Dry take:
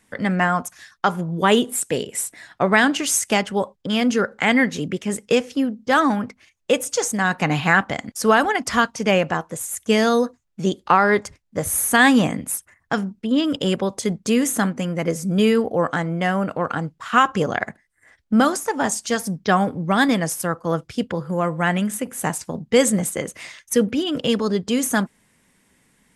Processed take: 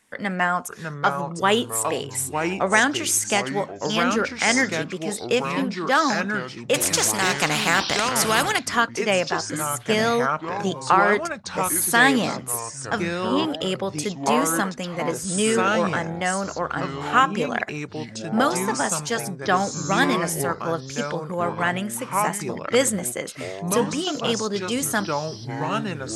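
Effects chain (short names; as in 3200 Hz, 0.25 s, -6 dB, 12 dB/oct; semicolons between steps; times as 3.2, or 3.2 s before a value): low shelf 290 Hz -9.5 dB; echoes that change speed 0.535 s, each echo -4 st, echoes 3, each echo -6 dB; 6.74–8.59 spectral compressor 2:1; gain -1 dB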